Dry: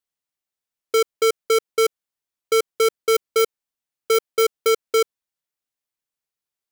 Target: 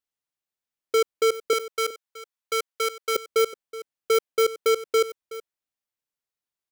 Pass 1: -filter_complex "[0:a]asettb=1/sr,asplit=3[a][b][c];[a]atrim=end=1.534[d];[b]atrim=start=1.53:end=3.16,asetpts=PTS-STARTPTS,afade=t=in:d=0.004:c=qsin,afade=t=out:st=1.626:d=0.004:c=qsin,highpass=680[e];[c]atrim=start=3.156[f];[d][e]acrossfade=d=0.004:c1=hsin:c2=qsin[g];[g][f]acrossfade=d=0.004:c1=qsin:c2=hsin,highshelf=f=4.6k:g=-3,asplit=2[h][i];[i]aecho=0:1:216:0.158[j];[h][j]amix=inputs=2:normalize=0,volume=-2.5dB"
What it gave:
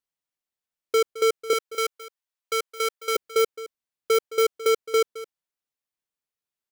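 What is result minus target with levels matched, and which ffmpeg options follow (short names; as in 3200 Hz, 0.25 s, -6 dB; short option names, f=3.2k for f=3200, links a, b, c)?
echo 0.157 s early
-filter_complex "[0:a]asettb=1/sr,asplit=3[a][b][c];[a]atrim=end=1.534[d];[b]atrim=start=1.53:end=3.16,asetpts=PTS-STARTPTS,afade=t=in:d=0.004:c=qsin,afade=t=out:st=1.626:d=0.004:c=qsin,highpass=680[e];[c]atrim=start=3.156[f];[d][e]acrossfade=d=0.004:c1=hsin:c2=qsin[g];[g][f]acrossfade=d=0.004:c1=qsin:c2=hsin,highshelf=f=4.6k:g=-3,asplit=2[h][i];[i]aecho=0:1:373:0.158[j];[h][j]amix=inputs=2:normalize=0,volume=-2.5dB"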